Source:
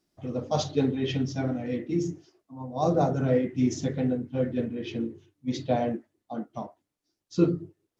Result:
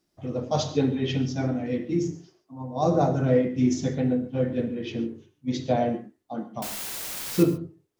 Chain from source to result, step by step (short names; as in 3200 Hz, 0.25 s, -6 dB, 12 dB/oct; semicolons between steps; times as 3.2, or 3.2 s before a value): 6.62–7.43 requantised 6-bit, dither triangular; non-linear reverb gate 0.16 s flat, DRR 10 dB; gain +1.5 dB